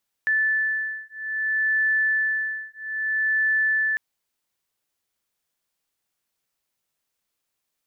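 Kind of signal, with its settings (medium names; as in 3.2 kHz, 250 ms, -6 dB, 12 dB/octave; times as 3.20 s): beating tones 1.75 kHz, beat 0.61 Hz, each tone -24 dBFS 3.70 s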